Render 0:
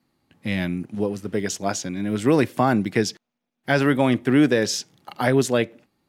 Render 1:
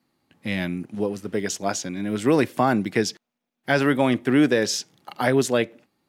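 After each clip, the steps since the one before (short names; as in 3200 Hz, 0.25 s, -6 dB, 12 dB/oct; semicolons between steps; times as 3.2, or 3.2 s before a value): low shelf 110 Hz -8.5 dB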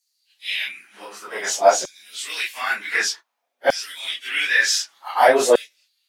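phase scrambler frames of 0.1 s; LFO high-pass saw down 0.54 Hz 490–6400 Hz; gain +5.5 dB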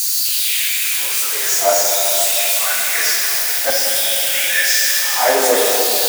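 switching spikes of -10.5 dBFS; plate-style reverb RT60 4.4 s, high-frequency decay 1×, DRR -2.5 dB; gain -3.5 dB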